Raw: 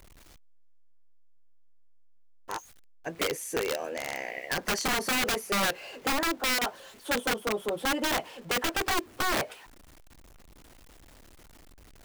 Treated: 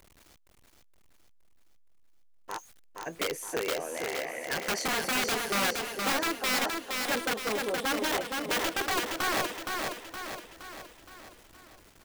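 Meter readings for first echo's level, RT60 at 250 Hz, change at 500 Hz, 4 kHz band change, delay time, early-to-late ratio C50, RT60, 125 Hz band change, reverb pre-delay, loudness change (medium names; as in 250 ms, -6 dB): -4.0 dB, no reverb, -0.5 dB, 0.0 dB, 468 ms, no reverb, no reverb, -2.5 dB, no reverb, -0.5 dB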